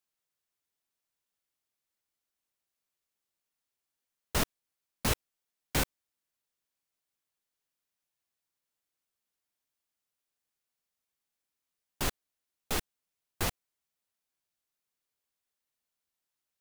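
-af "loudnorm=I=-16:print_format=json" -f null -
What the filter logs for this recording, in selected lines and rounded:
"input_i" : "-34.3",
"input_tp" : "-13.9",
"input_lra" : "4.9",
"input_thresh" : "-44.5",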